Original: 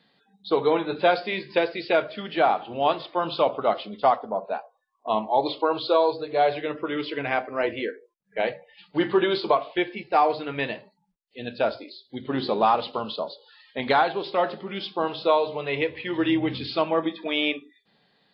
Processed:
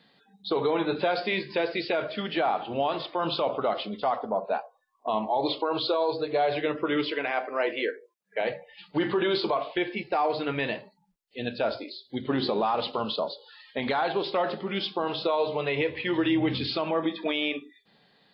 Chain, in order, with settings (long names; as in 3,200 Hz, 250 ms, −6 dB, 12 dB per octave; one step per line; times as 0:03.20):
0:07.11–0:08.41: high-pass filter 370 Hz 12 dB per octave
brickwall limiter −19.5 dBFS, peak gain reduction 10.5 dB
level +2.5 dB